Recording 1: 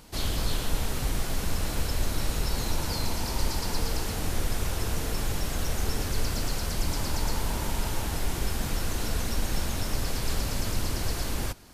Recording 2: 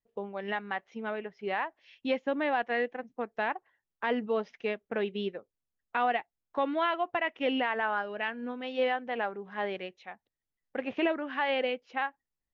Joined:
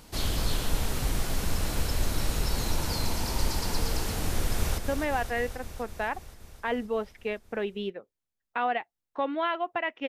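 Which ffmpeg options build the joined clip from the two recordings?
ffmpeg -i cue0.wav -i cue1.wav -filter_complex "[0:a]apad=whole_dur=10.08,atrim=end=10.08,atrim=end=4.782[link_01];[1:a]atrim=start=2.168:end=7.47[link_02];[link_01][link_02]acrossfade=duration=0.004:curve1=hsin:curve2=hsin,asplit=2[link_03][link_04];[link_04]afade=type=in:start_time=4.31:duration=0.01,afade=type=out:start_time=4.78:duration=0.01,aecho=0:1:260|520|780|1040|1300|1560|1820|2080|2340|2600|2860|3120:0.421697|0.316272|0.237204|0.177903|0.133427|0.100071|0.0750529|0.0562897|0.0422173|0.0316629|0.0237472|0.0178104[link_05];[link_03][link_05]amix=inputs=2:normalize=0" out.wav

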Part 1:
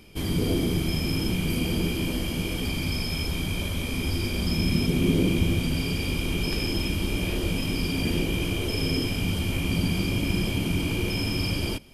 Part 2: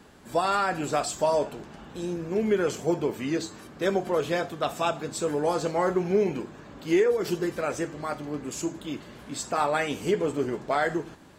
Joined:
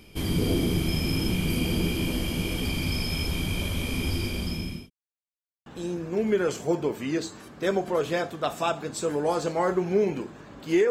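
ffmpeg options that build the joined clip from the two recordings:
ffmpeg -i cue0.wav -i cue1.wav -filter_complex "[0:a]apad=whole_dur=10.9,atrim=end=10.9,asplit=2[link_01][link_02];[link_01]atrim=end=4.9,asetpts=PTS-STARTPTS,afade=type=out:start_time=3.86:duration=1.04:curve=qsin[link_03];[link_02]atrim=start=4.9:end=5.66,asetpts=PTS-STARTPTS,volume=0[link_04];[1:a]atrim=start=1.85:end=7.09,asetpts=PTS-STARTPTS,afade=type=in:duration=0.004:curve=hsin[link_05];[link_03][link_04][link_05]concat=n=3:v=0:a=1" out.wav

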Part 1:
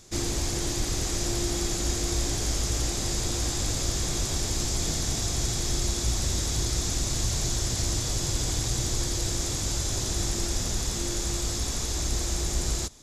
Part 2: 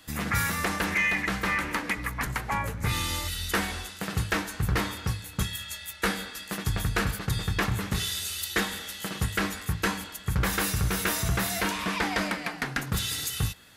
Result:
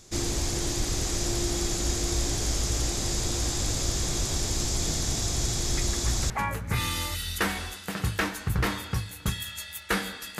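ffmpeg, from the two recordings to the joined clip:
ffmpeg -i cue0.wav -i cue1.wav -filter_complex "[1:a]asplit=2[link_01][link_02];[0:a]apad=whole_dur=10.39,atrim=end=10.39,atrim=end=6.302[link_03];[link_02]atrim=start=2.428:end=6.52[link_04];[link_01]atrim=start=1.9:end=2.43,asetpts=PTS-STARTPTS,volume=-11.5dB,afade=type=in:duration=0.004:curve=hsin,afade=type=out:start_time=0.526:duration=0.004:curve=hsin,adelay=254457S[link_05];[link_03][link_04]acrossfade=duration=0.004:curve1=hsin:curve2=hsin[link_06];[link_06][link_05]amix=inputs=2:normalize=0" out.wav

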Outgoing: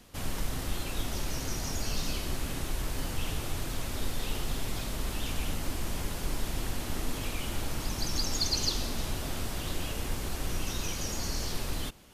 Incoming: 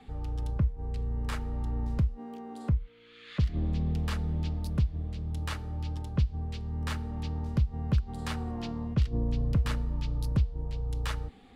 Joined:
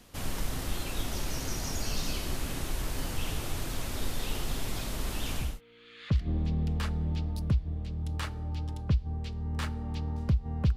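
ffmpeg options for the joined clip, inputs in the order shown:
ffmpeg -i cue0.wav -i cue1.wav -filter_complex "[0:a]apad=whole_dur=10.76,atrim=end=10.76,atrim=end=5.61,asetpts=PTS-STARTPTS[link_01];[1:a]atrim=start=2.63:end=8.04,asetpts=PTS-STARTPTS[link_02];[link_01][link_02]acrossfade=duration=0.26:curve1=tri:curve2=tri" out.wav

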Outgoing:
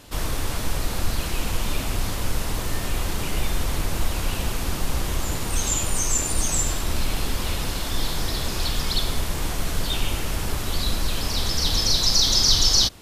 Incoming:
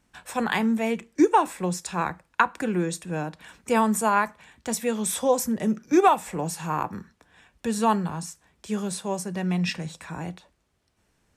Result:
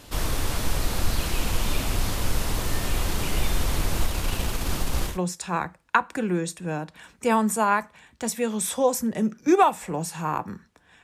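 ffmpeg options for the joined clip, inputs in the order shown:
ffmpeg -i cue0.wav -i cue1.wav -filter_complex "[0:a]asettb=1/sr,asplit=3[link_01][link_02][link_03];[link_01]atrim=end=4.064[link_04];[link_02]atrim=start=4.06:end=5.19,asetpts=PTS-STARTPTS,afade=type=in:duration=0.004:curve=qsin,afade=type=out:start_time=1.126:duration=0.004:curve=qsin,aeval=exprs='if(lt(val(0),0),0.708*val(0),val(0))':channel_layout=same[link_05];[link_03]atrim=start=5.186[link_06];[link_04][link_05]acrossfade=duration=0.004:curve1=hsin:curve2=qsin[link_07];[link_07][link_06]acrossfade=duration=0.004:curve1=qsin:curve2=hsin,apad=whole_dur=11.03,atrim=end=11.03,atrim=end=5.19,asetpts=PTS-STARTPTS[link_08];[1:a]atrim=start=1.5:end=7.48,asetpts=PTS-STARTPTS[link_09];[link_08][link_09]acrossfade=duration=0.14:curve1=tri:curve2=tri" out.wav

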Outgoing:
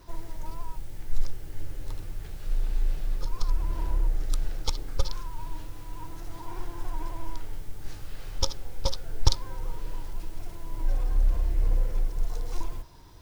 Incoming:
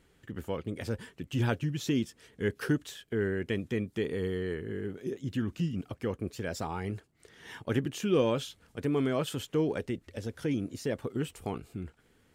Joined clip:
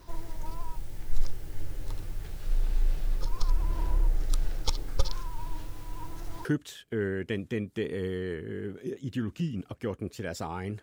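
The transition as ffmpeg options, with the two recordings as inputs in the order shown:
ffmpeg -i cue0.wav -i cue1.wav -filter_complex "[0:a]apad=whole_dur=10.82,atrim=end=10.82,atrim=end=6.452[link_01];[1:a]atrim=start=2.648:end=7.02[link_02];[link_01][link_02]acrossfade=duration=0.004:curve1=hsin:curve2=hsin" out.wav

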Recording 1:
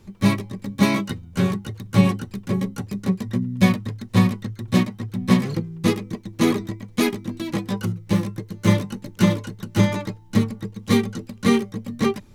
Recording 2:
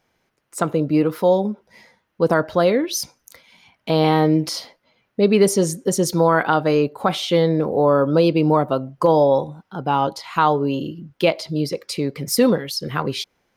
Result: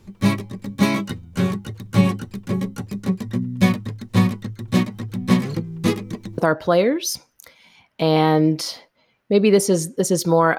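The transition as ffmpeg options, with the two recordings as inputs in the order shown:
ffmpeg -i cue0.wav -i cue1.wav -filter_complex "[0:a]asettb=1/sr,asplit=3[link_01][link_02][link_03];[link_01]atrim=end=4.824[link_04];[link_02]atrim=start=4.82:end=6.38,asetpts=PTS-STARTPTS,afade=type=in:duration=0.004:curve=qsin,afade=type=out:start_time=1.556:duration=0.004:curve=qsin,acompressor=mode=upward:threshold=-26dB:ratio=2.5:attack=3.2:release=140:knee=2.83:detection=peak[link_05];[link_03]atrim=start=6.376[link_06];[link_04][link_05]acrossfade=duration=0.004:curve1=hsin:curve2=qsin[link_07];[link_07][link_06]acrossfade=duration=0.004:curve1=qsin:curve2=hsin,apad=whole_dur=10.58,atrim=end=10.58,atrim=end=6.382[link_08];[1:a]atrim=start=2.258:end=6.46[link_09];[link_08][link_09]acrossfade=duration=0.004:curve1=hsin:curve2=hsin" out.wav

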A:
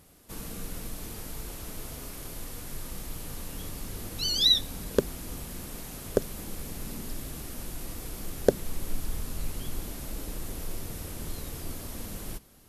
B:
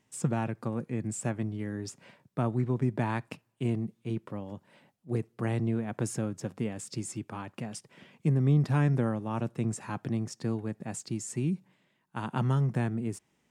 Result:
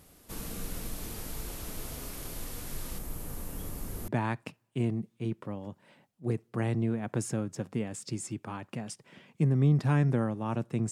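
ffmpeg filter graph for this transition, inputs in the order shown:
ffmpeg -i cue0.wav -i cue1.wav -filter_complex "[0:a]asettb=1/sr,asplit=3[link_01][link_02][link_03];[link_01]atrim=end=2.984[link_04];[link_02]atrim=start=2.98:end=4.08,asetpts=PTS-STARTPTS,afade=type=in:duration=0.004:curve=qsin,afade=type=out:start_time=1.096:duration=0.004:curve=qsin,equalizer=frequency=3800:width_type=o:width=2:gain=-8.5[link_05];[link_03]atrim=start=4.076[link_06];[link_04][link_05]acrossfade=duration=0.004:curve1=hsin:curve2=qsin[link_07];[link_07][link_06]acrossfade=duration=0.004:curve1=qsin:curve2=hsin,apad=whole_dur=10.91,atrim=end=10.91,atrim=end=4.082[link_08];[1:a]atrim=start=2.928:end=9.76[link_09];[link_08][link_09]acrossfade=duration=0.004:curve1=hsin:curve2=hsin" out.wav

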